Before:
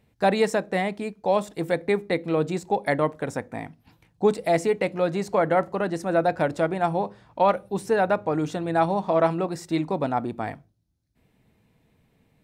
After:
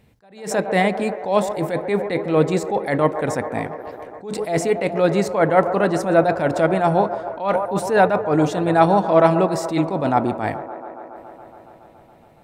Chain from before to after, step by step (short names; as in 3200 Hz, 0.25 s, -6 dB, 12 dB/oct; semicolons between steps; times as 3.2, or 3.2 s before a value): band-limited delay 0.14 s, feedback 81%, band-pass 740 Hz, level -13 dB; attack slew limiter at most 120 dB/s; gain +8 dB